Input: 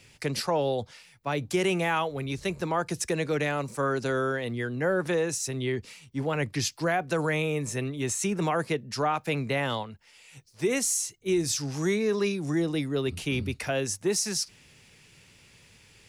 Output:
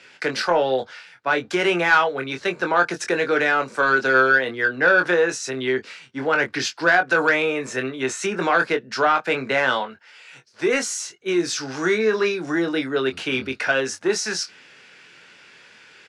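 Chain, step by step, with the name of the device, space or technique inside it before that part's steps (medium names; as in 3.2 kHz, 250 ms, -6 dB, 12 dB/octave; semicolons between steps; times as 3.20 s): intercom (band-pass 330–4600 Hz; peaking EQ 1.5 kHz +12 dB 0.37 oct; saturation -16 dBFS, distortion -20 dB; doubling 23 ms -6.5 dB); trim +7.5 dB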